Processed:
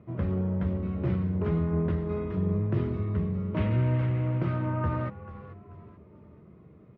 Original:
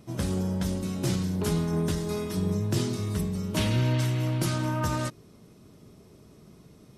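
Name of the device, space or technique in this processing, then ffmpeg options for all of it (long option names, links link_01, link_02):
bass cabinet: -filter_complex "[0:a]asplit=5[link_01][link_02][link_03][link_04][link_05];[link_02]adelay=438,afreqshift=-110,volume=-14dB[link_06];[link_03]adelay=876,afreqshift=-220,volume=-22dB[link_07];[link_04]adelay=1314,afreqshift=-330,volume=-29.9dB[link_08];[link_05]adelay=1752,afreqshift=-440,volume=-37.9dB[link_09];[link_01][link_06][link_07][link_08][link_09]amix=inputs=5:normalize=0,highpass=78,equalizer=frequency=80:width_type=q:width=4:gain=9,equalizer=frequency=270:width_type=q:width=4:gain=-5,equalizer=frequency=820:width_type=q:width=4:gain=-6,equalizer=frequency=1600:width_type=q:width=4:gain=-5,lowpass=frequency=2000:width=0.5412,lowpass=frequency=2000:width=1.3066"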